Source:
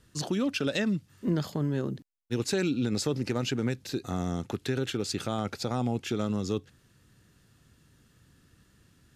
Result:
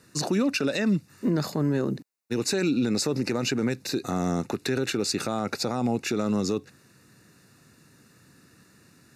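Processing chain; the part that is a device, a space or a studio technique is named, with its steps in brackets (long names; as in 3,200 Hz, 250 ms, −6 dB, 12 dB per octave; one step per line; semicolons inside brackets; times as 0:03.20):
PA system with an anti-feedback notch (high-pass filter 160 Hz 12 dB per octave; Butterworth band-reject 3,200 Hz, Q 4.6; brickwall limiter −24.5 dBFS, peak gain reduction 7.5 dB)
level +8 dB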